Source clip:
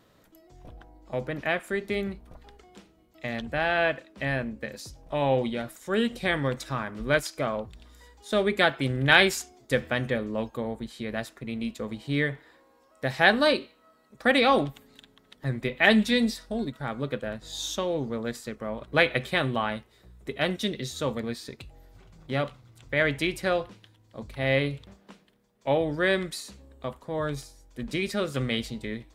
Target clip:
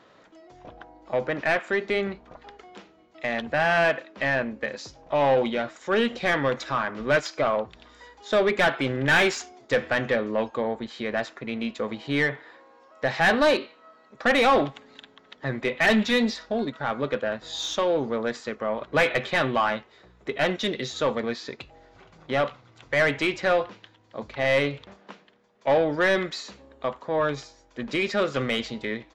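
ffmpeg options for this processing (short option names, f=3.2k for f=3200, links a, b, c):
-filter_complex "[0:a]aresample=16000,aresample=44100,asplit=2[a][b];[b]highpass=f=720:p=1,volume=24dB,asoftclip=type=tanh:threshold=-2.5dB[c];[a][c]amix=inputs=2:normalize=0,lowpass=f=1.8k:p=1,volume=-6dB,volume=-6.5dB"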